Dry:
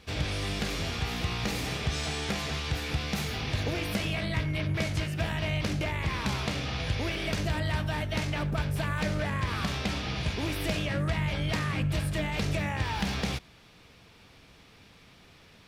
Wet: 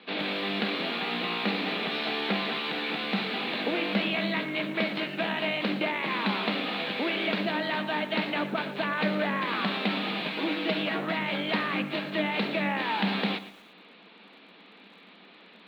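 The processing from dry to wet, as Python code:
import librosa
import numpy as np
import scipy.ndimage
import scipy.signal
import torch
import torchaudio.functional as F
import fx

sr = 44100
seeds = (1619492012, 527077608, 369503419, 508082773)

y = fx.lower_of_two(x, sr, delay_ms=6.3, at=(10.3, 11.19))
y = scipy.signal.sosfilt(scipy.signal.cheby1(5, 1.0, [190.0, 4100.0], 'bandpass', fs=sr, output='sos'), y)
y = fx.echo_crushed(y, sr, ms=117, feedback_pct=35, bits=9, wet_db=-14.0)
y = F.gain(torch.from_numpy(y), 5.0).numpy()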